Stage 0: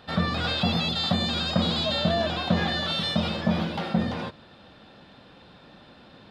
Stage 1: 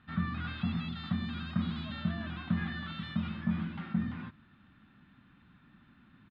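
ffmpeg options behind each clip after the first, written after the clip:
-af "firequalizer=gain_entry='entry(250,0);entry(490,-23);entry(1200,-3);entry(2000,-3);entry(5400,-26)':delay=0.05:min_phase=1,volume=-6.5dB"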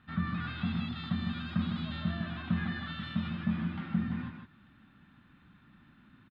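-af "aecho=1:1:154:0.531"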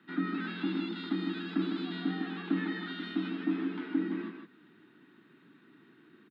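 -af "afreqshift=100"

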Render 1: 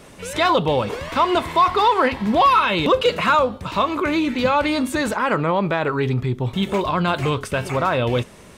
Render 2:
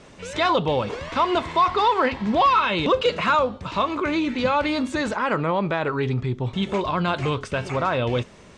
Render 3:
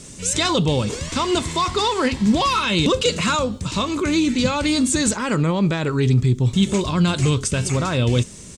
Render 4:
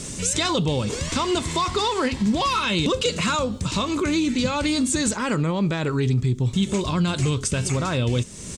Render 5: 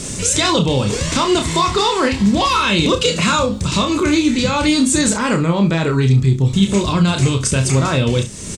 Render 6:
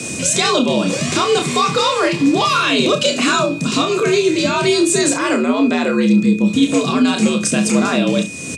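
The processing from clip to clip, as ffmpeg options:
-af "lowpass=f=7.4k:w=0.5412,lowpass=f=7.4k:w=1.3066,volume=-3dB"
-af "firequalizer=gain_entry='entry(160,0);entry(680,-14);entry(7600,14)':delay=0.05:min_phase=1,volume=9dB"
-af "acompressor=threshold=-34dB:ratio=2,volume=6.5dB"
-af "aecho=1:1:30|68:0.531|0.188,volume=6dB"
-af "aeval=exprs='val(0)+0.0316*sin(2*PI*2400*n/s)':c=same,afreqshift=79"

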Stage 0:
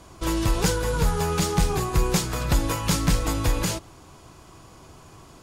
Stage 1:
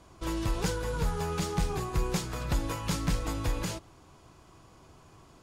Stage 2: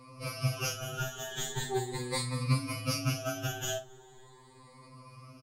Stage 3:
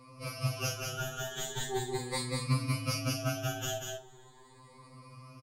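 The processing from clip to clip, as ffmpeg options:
-af "highshelf=f=6.5k:g=-5.5,volume=-7.5dB"
-filter_complex "[0:a]afftfilt=real='re*pow(10,20/40*sin(2*PI*(0.95*log(max(b,1)*sr/1024/100)/log(2)-(0.4)*(pts-256)/sr)))':imag='im*pow(10,20/40*sin(2*PI*(0.95*log(max(b,1)*sr/1024/100)/log(2)-(0.4)*(pts-256)/sr)))':win_size=1024:overlap=0.75,asplit=2[a][b];[b]adelay=46,volume=-10dB[c];[a][c]amix=inputs=2:normalize=0,afftfilt=real='re*2.45*eq(mod(b,6),0)':imag='im*2.45*eq(mod(b,6),0)':win_size=2048:overlap=0.75"
-af "aecho=1:1:191:0.631,volume=-2dB"

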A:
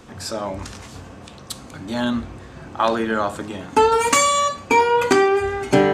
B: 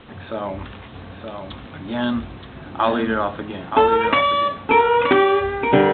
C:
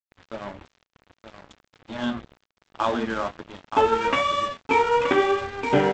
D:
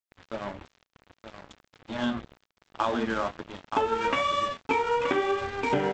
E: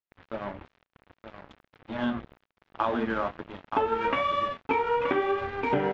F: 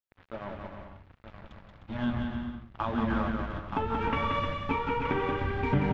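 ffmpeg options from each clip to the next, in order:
-af "aresample=8000,acrusher=bits=7:mix=0:aa=0.000001,aresample=44100,aecho=1:1:924:0.473"
-af "flanger=delay=8.7:depth=6.3:regen=39:speed=1.1:shape=sinusoidal,aresample=16000,aeval=exprs='sgn(val(0))*max(abs(val(0))-0.02,0)':c=same,aresample=44100"
-af "acompressor=threshold=-22dB:ratio=6"
-af "lowpass=2.7k"
-filter_complex "[0:a]asplit=2[a][b];[b]aecho=0:1:180|306|394.2|455.9|499.2:0.631|0.398|0.251|0.158|0.1[c];[a][c]amix=inputs=2:normalize=0,asubboost=boost=8.5:cutoff=160,volume=-4dB"

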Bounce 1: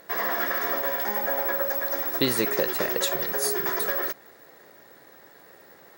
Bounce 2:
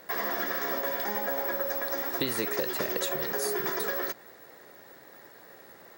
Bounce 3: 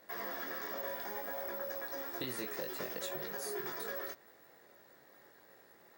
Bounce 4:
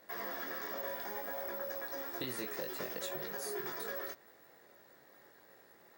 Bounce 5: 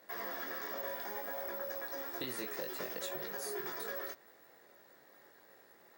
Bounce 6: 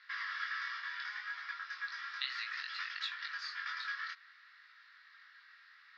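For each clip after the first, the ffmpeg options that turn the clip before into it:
-filter_complex "[0:a]acrossover=split=450|3600|7500[a][b][c][d];[a]acompressor=threshold=-33dB:ratio=4[e];[b]acompressor=threshold=-33dB:ratio=4[f];[c]acompressor=threshold=-41dB:ratio=4[g];[d]acompressor=threshold=-33dB:ratio=4[h];[e][f][g][h]amix=inputs=4:normalize=0"
-af "flanger=delay=19.5:depth=4.2:speed=0.63,volume=-7dB"
-af anull
-af "lowshelf=f=99:g=-10.5"
-af "asuperpass=centerf=2500:order=12:qfactor=0.66,volume=7.5dB"

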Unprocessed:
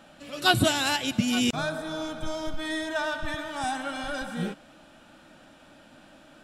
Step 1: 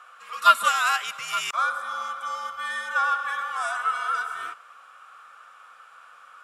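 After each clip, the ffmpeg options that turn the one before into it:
-af "afreqshift=-86,highpass=f=1.2k:t=q:w=6.2,equalizer=f=4k:w=1.4:g=-5.5"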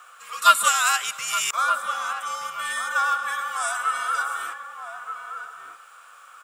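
-filter_complex "[0:a]aexciter=amount=1.3:drive=3.9:freq=7.1k,aemphasis=mode=production:type=50kf,asplit=2[a][b];[b]adelay=1224,volume=-6dB,highshelf=f=4k:g=-27.6[c];[a][c]amix=inputs=2:normalize=0"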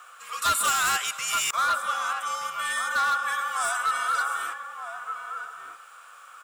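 -af "volume=20dB,asoftclip=hard,volume=-20dB"

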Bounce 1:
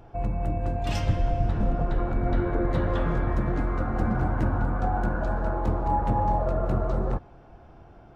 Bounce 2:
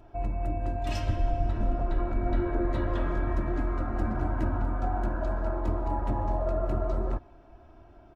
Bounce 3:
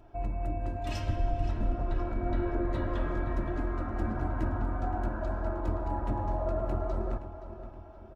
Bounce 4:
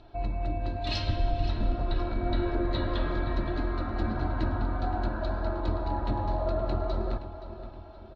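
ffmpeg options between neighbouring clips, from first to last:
-af "aecho=1:1:3.1:0.6,volume=-5dB"
-filter_complex "[0:a]asplit=2[a][b];[b]adelay=521,lowpass=f=4.8k:p=1,volume=-11.5dB,asplit=2[c][d];[d]adelay=521,lowpass=f=4.8k:p=1,volume=0.5,asplit=2[e][f];[f]adelay=521,lowpass=f=4.8k:p=1,volume=0.5,asplit=2[g][h];[h]adelay=521,lowpass=f=4.8k:p=1,volume=0.5,asplit=2[i][j];[j]adelay=521,lowpass=f=4.8k:p=1,volume=0.5[k];[a][c][e][g][i][k]amix=inputs=6:normalize=0,volume=-2.5dB"
-af "lowpass=f=4.1k:t=q:w=8.6,volume=2dB"

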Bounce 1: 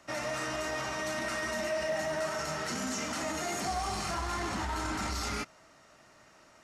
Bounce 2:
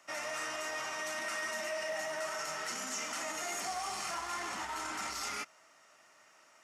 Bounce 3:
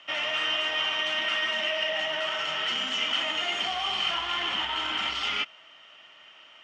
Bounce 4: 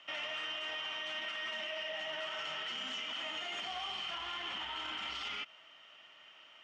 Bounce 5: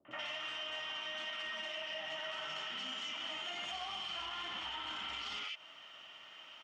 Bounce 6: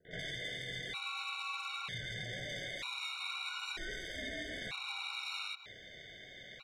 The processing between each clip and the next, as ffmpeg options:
-af "highpass=f=1.1k:p=1,equalizer=f=4.1k:w=3.5:g=-6,bandreject=f=1.6k:w=23"
-af "lowpass=f=3.1k:t=q:w=13,lowshelf=f=94:g=5,volume=4.5dB"
-af "alimiter=level_in=1.5dB:limit=-24dB:level=0:latency=1:release=69,volume=-1.5dB,volume=-6dB"
-filter_complex "[0:a]acrossover=split=460|2000[a][b][c];[b]adelay=50[d];[c]adelay=110[e];[a][d][e]amix=inputs=3:normalize=0,acompressor=threshold=-47dB:ratio=2.5,volume=5.5dB"
-af "asoftclip=type=tanh:threshold=-38dB,aeval=exprs='val(0)*sin(2*PI*750*n/s)':c=same,afftfilt=real='re*gt(sin(2*PI*0.53*pts/sr)*(1-2*mod(floor(b*sr/1024/740),2)),0)':imag='im*gt(sin(2*PI*0.53*pts/sr)*(1-2*mod(floor(b*sr/1024/740),2)),0)':win_size=1024:overlap=0.75,volume=8.5dB"

